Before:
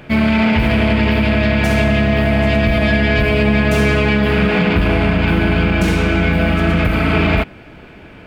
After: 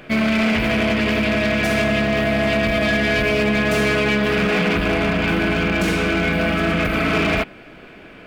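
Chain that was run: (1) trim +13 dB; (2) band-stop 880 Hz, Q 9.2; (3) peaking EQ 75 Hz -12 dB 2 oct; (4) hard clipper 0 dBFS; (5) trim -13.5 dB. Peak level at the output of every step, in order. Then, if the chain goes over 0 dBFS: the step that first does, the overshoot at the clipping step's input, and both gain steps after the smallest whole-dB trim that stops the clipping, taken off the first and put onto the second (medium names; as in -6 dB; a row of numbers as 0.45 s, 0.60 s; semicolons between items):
+9.0 dBFS, +9.0 dBFS, +7.0 dBFS, 0.0 dBFS, -13.5 dBFS; step 1, 7.0 dB; step 1 +6 dB, step 5 -6.5 dB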